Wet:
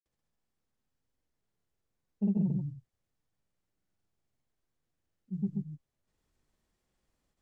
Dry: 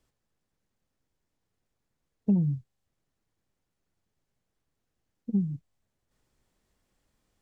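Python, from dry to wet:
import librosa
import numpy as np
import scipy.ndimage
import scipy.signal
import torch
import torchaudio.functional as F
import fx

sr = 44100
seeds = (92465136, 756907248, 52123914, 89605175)

y = fx.granulator(x, sr, seeds[0], grain_ms=100.0, per_s=20.0, spray_ms=100.0, spread_st=0)
y = y + 10.0 ** (-4.0 / 20.0) * np.pad(y, (int(132 * sr / 1000.0), 0))[:len(y)]
y = y * librosa.db_to_amplitude(-4.5)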